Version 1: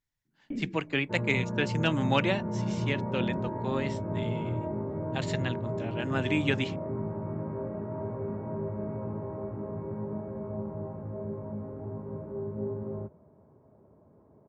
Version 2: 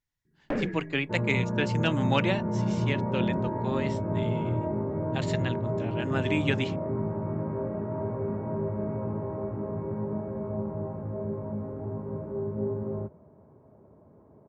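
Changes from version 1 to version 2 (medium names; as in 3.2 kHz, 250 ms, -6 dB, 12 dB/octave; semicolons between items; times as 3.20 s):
first sound: remove cascade formant filter i; second sound +3.5 dB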